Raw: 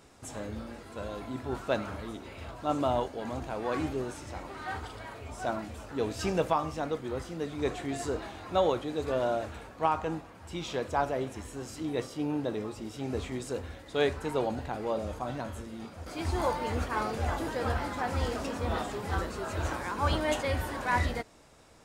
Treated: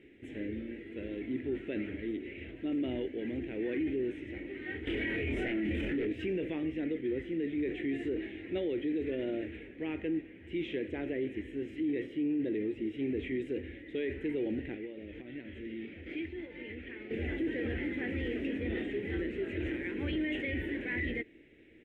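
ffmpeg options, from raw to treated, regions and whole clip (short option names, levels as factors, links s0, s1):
-filter_complex "[0:a]asettb=1/sr,asplit=3[s0][s1][s2];[s0]atrim=end=4.874[s3];[s1]atrim=start=4.87:end=6.07,asetpts=PTS-STARTPTS,afade=t=in:d=0.004:c=qsin,afade=t=out:st=1.196:d=0.004:c=qsin,aeval=exprs='0.15*sin(PI/2*3.55*val(0)/0.15)':c=same,asplit=2[s4][s5];[s5]adelay=24,volume=0.75[s6];[s4][s6]amix=inputs=2:normalize=0,atrim=end_sample=52920[s7];[s2]atrim=start=6.066[s8];[s3][s7]acrossfade=d=0.004:c1=hsin:c2=qsin[s9];[s9][s8]acrossfade=d=0.004:c1=qsin:c2=hsin,asettb=1/sr,asplit=3[s10][s11][s12];[s10]atrim=end=14.744[s13];[s11]atrim=start=14.74:end=17.11,asetpts=PTS-STARTPTS,afade=t=in:d=0.004:c=qsin,afade=t=out:st=2.366:d=0.004:c=qsin,lowpass=3600,acompressor=threshold=0.0112:ratio=12:attack=3.2:release=140:knee=1:detection=peak,highshelf=f=2100:g=10.5[s14];[s12]atrim=start=17.106[s15];[s13][s14]acrossfade=d=0.004:c1=hsin:c2=qsin[s16];[s16][s15]acrossfade=d=0.004:c1=qsin:c2=hsin,firequalizer=gain_entry='entry(150,0);entry(330,15);entry(660,-11);entry(1100,-25);entry(1900,12);entry(3200,3);entry(4600,-24);entry(9400,-22)':delay=0.05:min_phase=1,alimiter=limit=0.0944:level=0:latency=1:release=13,volume=0.501"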